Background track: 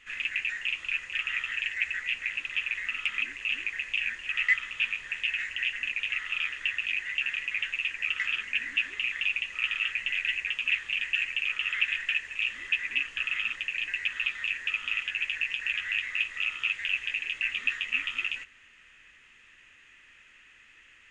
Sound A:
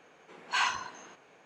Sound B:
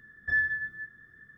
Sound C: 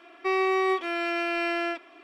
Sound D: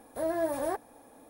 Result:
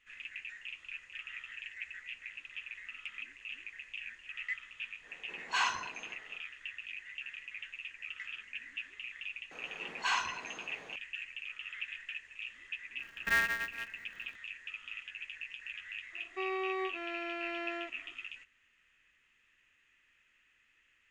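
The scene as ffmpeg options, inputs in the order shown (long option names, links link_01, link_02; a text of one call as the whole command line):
ffmpeg -i bed.wav -i cue0.wav -i cue1.wav -i cue2.wav -filter_complex "[1:a]asplit=2[link_01][link_02];[0:a]volume=-14dB[link_03];[link_02]acompressor=mode=upward:threshold=-36dB:ratio=2.5:attack=0.23:release=24:knee=2.83:detection=peak[link_04];[2:a]aeval=exprs='val(0)*sgn(sin(2*PI*120*n/s))':channel_layout=same[link_05];[3:a]lowpass=frequency=4200:width=0.5412,lowpass=frequency=4200:width=1.3066[link_06];[link_01]atrim=end=1.45,asetpts=PTS-STARTPTS,volume=-2.5dB,afade=type=in:duration=0.1,afade=type=out:start_time=1.35:duration=0.1,adelay=5000[link_07];[link_04]atrim=end=1.45,asetpts=PTS-STARTPTS,volume=-3.5dB,afade=type=in:duration=0.004:curve=hsin,afade=type=out:start_time=1.446:duration=0.004:curve=hsin,adelay=9510[link_08];[link_05]atrim=end=1.37,asetpts=PTS-STARTPTS,volume=-3dB,afade=type=in:duration=0.004:curve=hsin,afade=type=out:start_time=1.366:duration=0.004:curve=hsin,adelay=12990[link_09];[link_06]atrim=end=2.03,asetpts=PTS-STARTPTS,volume=-11.5dB,afade=type=in:duration=0.004:curve=hsin,afade=type=out:start_time=2.026:duration=0.004:curve=hsin,adelay=16120[link_10];[link_03][link_07][link_08][link_09][link_10]amix=inputs=5:normalize=0" out.wav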